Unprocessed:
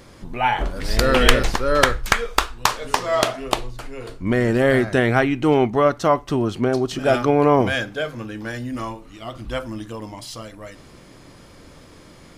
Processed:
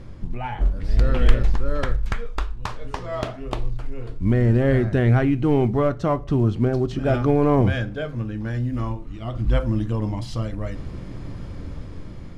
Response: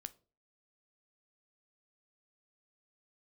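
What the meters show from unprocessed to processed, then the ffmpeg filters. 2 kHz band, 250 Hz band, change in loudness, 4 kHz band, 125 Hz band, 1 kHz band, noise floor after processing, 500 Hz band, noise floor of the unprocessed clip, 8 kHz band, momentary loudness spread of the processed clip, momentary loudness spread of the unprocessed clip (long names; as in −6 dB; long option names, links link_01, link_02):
−10.5 dB, −0.5 dB, −3.0 dB, −14.0 dB, +6.0 dB, −8.5 dB, −36 dBFS, −4.5 dB, −46 dBFS, below −15 dB, 17 LU, 17 LU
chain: -filter_complex "[0:a]acontrast=21,lowshelf=frequency=210:gain=10.5,dynaudnorm=framelen=440:gausssize=7:maxgain=11dB,acrusher=bits=8:mode=log:mix=0:aa=0.000001,aemphasis=mode=reproduction:type=50fm,asplit=2[link_01][link_02];[1:a]atrim=start_sample=2205,lowshelf=frequency=240:gain=9.5[link_03];[link_02][link_03]afir=irnorm=-1:irlink=0,volume=9.5dB[link_04];[link_01][link_04]amix=inputs=2:normalize=0,volume=-17.5dB"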